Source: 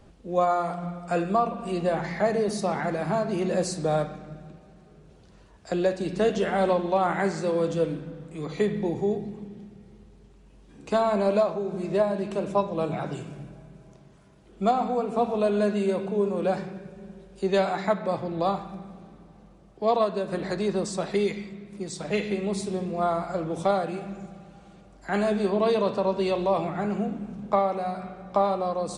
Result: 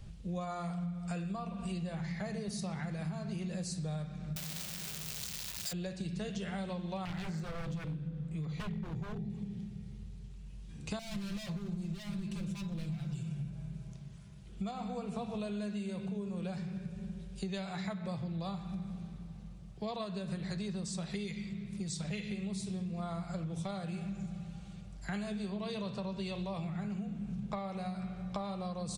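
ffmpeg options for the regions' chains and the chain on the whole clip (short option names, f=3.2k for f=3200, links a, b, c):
-filter_complex "[0:a]asettb=1/sr,asplit=3[a][b][c];[a]atrim=end=4.364[d];[b]atrim=start=4.36:end=5.73,asetpts=PTS-STARTPTS,afade=t=in:d=0.004:c=qsin,afade=t=out:st=1.366:d=0.004:c=qsin,aeval=exprs='val(0)+0.5*0.0355*sgn(val(0))':c=same,acrossover=split=7800[e][f];[f]acompressor=threshold=-54dB:ratio=4:attack=1:release=60[g];[e][g]amix=inputs=2:normalize=0,aemphasis=mode=production:type=riaa[h];[c]atrim=start=5.726[i];[d][h]acrossfade=d=0.004:c1=hsin:c2=qsin[j];[j][i]acrossfade=d=0.004:c1=qsin:c2=hsin,asettb=1/sr,asplit=3[k][l][m];[k]atrim=end=7.054[n];[l]atrim=start=7.05:end=9.3,asetpts=PTS-STARTPTS,afade=t=in:d=0.004:c=qsin,afade=t=out:st=2.246:d=0.004:c=qsin,aeval=exprs='0.0562*(abs(mod(val(0)/0.0562+3,4)-2)-1)':c=same,highshelf=f=2.9k:g=-10[o];[m]atrim=start=9.296[p];[n][o]acrossfade=d=0.004:c1=hsin:c2=qsin[q];[q][p]acrossfade=d=0.004:c1=qsin:c2=hsin,asettb=1/sr,asplit=3[r][s][t];[r]atrim=end=10.994[u];[s]atrim=start=10.99:end=13.5,asetpts=PTS-STARTPTS,afade=t=in:d=0.004:c=qsin,afade=t=out:st=2.506:d=0.004:c=qsin,volume=29.5dB,asoftclip=hard,volume=-29.5dB,aecho=1:1:5.8:0.86,atrim=end_sample=110691,acrossover=split=350|3000[v][w][x];[w]acompressor=threshold=-40dB:ratio=3:attack=3.2:release=140:knee=2.83:detection=peak[y];[v][y][x]amix=inputs=3:normalize=0[z];[t]atrim=start=13.496[aa];[u][z]acrossfade=d=0.004:c1=hsin:c2=qsin[ab];[ab][aa]acrossfade=d=0.004:c1=qsin:c2=hsin,firequalizer=gain_entry='entry(170,0);entry(260,-17);entry(890,-16);entry(2400,-7);entry(3700,-5)':delay=0.05:min_phase=1,acompressor=threshold=-42dB:ratio=10,volume=7dB"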